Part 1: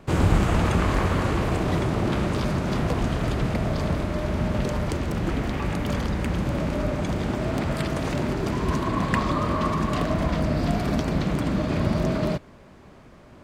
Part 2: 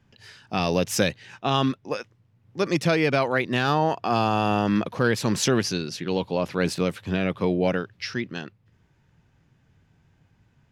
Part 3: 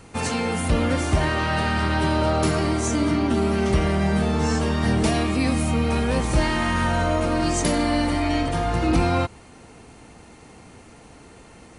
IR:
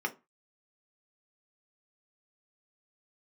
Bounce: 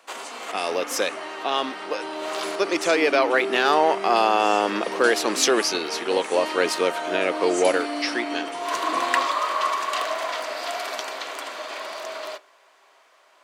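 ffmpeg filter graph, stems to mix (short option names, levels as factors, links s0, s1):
-filter_complex "[0:a]highpass=940,volume=1.33,asplit=2[s0][s1];[s1]volume=0.2[s2];[1:a]volume=0.891,asplit=2[s3][s4];[2:a]volume=0.316,asplit=2[s5][s6];[s6]volume=0.335[s7];[s4]apad=whole_len=592418[s8];[s0][s8]sidechaincompress=threshold=0.00224:ratio=8:attack=6:release=164[s9];[3:a]atrim=start_sample=2205[s10];[s2][s7]amix=inputs=2:normalize=0[s11];[s11][s10]afir=irnorm=-1:irlink=0[s12];[s9][s3][s5][s12]amix=inputs=4:normalize=0,highpass=f=350:w=0.5412,highpass=f=350:w=1.3066,dynaudnorm=f=300:g=17:m=2.11"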